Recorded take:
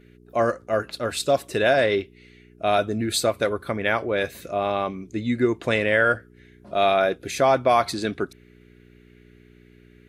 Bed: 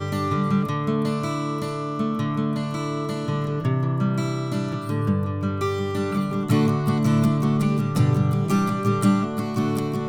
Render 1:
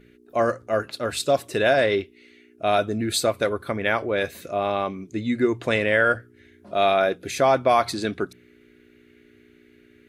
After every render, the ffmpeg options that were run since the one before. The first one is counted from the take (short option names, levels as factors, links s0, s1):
-af "bandreject=f=60:t=h:w=4,bandreject=f=120:t=h:w=4,bandreject=f=180:t=h:w=4"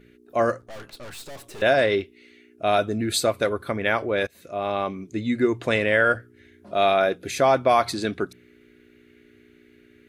-filter_complex "[0:a]asettb=1/sr,asplit=3[s0][s1][s2];[s0]atrim=end=0.614[s3];[s1]atrim=start=0.61:end=1.62,asetpts=PTS-STARTPTS,afade=t=in:d=0.004:c=qsin,afade=t=out:st=1.006:d=0.004:c=qsin,aeval=exprs='(tanh(79.4*val(0)+0.7)-tanh(0.7))/79.4':c=same[s4];[s2]atrim=start=1.616[s5];[s3][s4]acrossfade=d=0.004:c1=hsin:c2=qsin[s6];[s6][s5]acrossfade=d=0.004:c1=qsin:c2=hsin,asplit=2[s7][s8];[s7]atrim=end=4.27,asetpts=PTS-STARTPTS,afade=t=out:st=4.266:d=0.004:c=hsin:silence=0.0794328[s9];[s8]atrim=start=4.27,asetpts=PTS-STARTPTS,afade=t=in:d=0.72:c=qsin:silence=0.0794328[s10];[s9][s10]concat=n=2:v=0:a=1"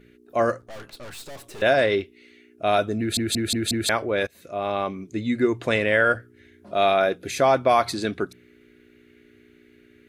-filter_complex "[0:a]asplit=6[s0][s1][s2][s3][s4][s5];[s0]atrim=end=3.172[s6];[s1]atrim=start=2.988:end=3.172[s7];[s2]atrim=start=2.988:end=3.172[s8];[s3]atrim=start=2.988:end=3.172[s9];[s4]atrim=start=2.988:end=3.172[s10];[s5]atrim=start=3.888[s11];[s6][s7]acrossfade=d=0.004:c1=hsin:c2=hsin[s12];[s12][s8]acrossfade=d=0.004:c1=hsin:c2=hsin[s13];[s13][s9]acrossfade=d=0.004:c1=hsin:c2=hsin[s14];[s14][s10]acrossfade=d=0.004:c1=hsin:c2=hsin[s15];[s15][s11]acrossfade=d=0.004:c1=hsin:c2=hsin"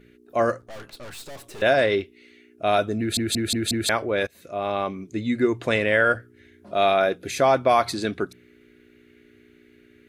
-af anull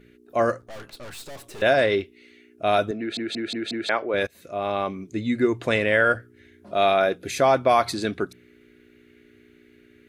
-filter_complex "[0:a]asettb=1/sr,asplit=3[s0][s1][s2];[s0]atrim=end=2.914[s3];[s1]atrim=start=2.91:end=4.14,asetpts=PTS-STARTPTS,afade=t=in:d=0.004:c=qsin,afade=t=out:st=1.226:d=0.004:c=qsin,highpass=290,lowpass=3200[s4];[s2]atrim=start=4.136[s5];[s3][s4]acrossfade=d=0.004:c1=hsin:c2=qsin[s6];[s6][s5]acrossfade=d=0.004:c1=qsin:c2=hsin"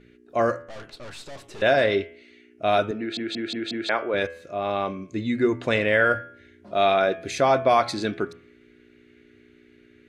-af "lowpass=7100,bandreject=f=82.93:t=h:w=4,bandreject=f=165.86:t=h:w=4,bandreject=f=248.79:t=h:w=4,bandreject=f=331.72:t=h:w=4,bandreject=f=414.65:t=h:w=4,bandreject=f=497.58:t=h:w=4,bandreject=f=580.51:t=h:w=4,bandreject=f=663.44:t=h:w=4,bandreject=f=746.37:t=h:w=4,bandreject=f=829.3:t=h:w=4,bandreject=f=912.23:t=h:w=4,bandreject=f=995.16:t=h:w=4,bandreject=f=1078.09:t=h:w=4,bandreject=f=1161.02:t=h:w=4,bandreject=f=1243.95:t=h:w=4,bandreject=f=1326.88:t=h:w=4,bandreject=f=1409.81:t=h:w=4,bandreject=f=1492.74:t=h:w=4,bandreject=f=1575.67:t=h:w=4,bandreject=f=1658.6:t=h:w=4,bandreject=f=1741.53:t=h:w=4,bandreject=f=1824.46:t=h:w=4,bandreject=f=1907.39:t=h:w=4,bandreject=f=1990.32:t=h:w=4,bandreject=f=2073.25:t=h:w=4,bandreject=f=2156.18:t=h:w=4,bandreject=f=2239.11:t=h:w=4,bandreject=f=2322.04:t=h:w=4,bandreject=f=2404.97:t=h:w=4,bandreject=f=2487.9:t=h:w=4,bandreject=f=2570.83:t=h:w=4,bandreject=f=2653.76:t=h:w=4,bandreject=f=2736.69:t=h:w=4,bandreject=f=2819.62:t=h:w=4,bandreject=f=2902.55:t=h:w=4,bandreject=f=2985.48:t=h:w=4,bandreject=f=3068.41:t=h:w=4,bandreject=f=3151.34:t=h:w=4,bandreject=f=3234.27:t=h:w=4,bandreject=f=3317.2:t=h:w=4"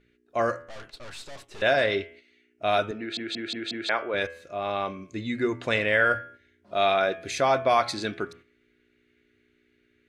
-af "agate=range=0.398:threshold=0.00631:ratio=16:detection=peak,equalizer=f=240:w=0.36:g=-5.5"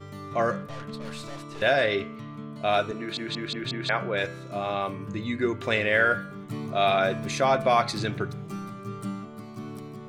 -filter_complex "[1:a]volume=0.178[s0];[0:a][s0]amix=inputs=2:normalize=0"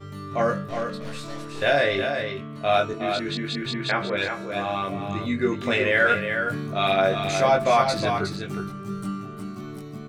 -filter_complex "[0:a]asplit=2[s0][s1];[s1]adelay=21,volume=0.75[s2];[s0][s2]amix=inputs=2:normalize=0,aecho=1:1:364:0.473"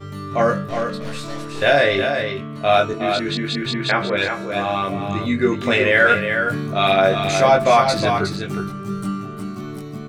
-af "volume=1.88,alimiter=limit=0.708:level=0:latency=1"